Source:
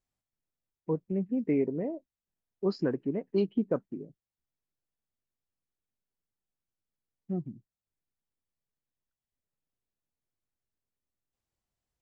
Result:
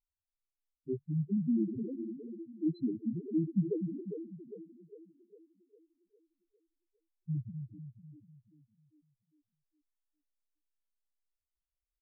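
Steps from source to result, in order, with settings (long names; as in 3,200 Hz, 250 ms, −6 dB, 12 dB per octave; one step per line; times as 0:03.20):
pitch shifter −3.5 semitones
echo with a time of its own for lows and highs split 330 Hz, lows 248 ms, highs 404 ms, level −7 dB
spectral peaks only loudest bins 2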